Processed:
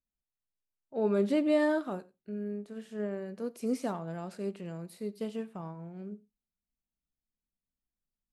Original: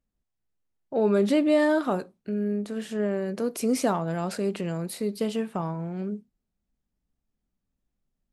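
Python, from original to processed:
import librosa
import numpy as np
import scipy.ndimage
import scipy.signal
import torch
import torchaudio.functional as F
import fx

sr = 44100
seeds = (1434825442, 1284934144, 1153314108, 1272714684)

y = fx.hpss(x, sr, part='percussive', gain_db=-4)
y = y + 10.0 ** (-19.5 / 20.0) * np.pad(y, (int(90 * sr / 1000.0), 0))[:len(y)]
y = fx.upward_expand(y, sr, threshold_db=-35.0, expansion=1.5)
y = F.gain(torch.from_numpy(y), -4.5).numpy()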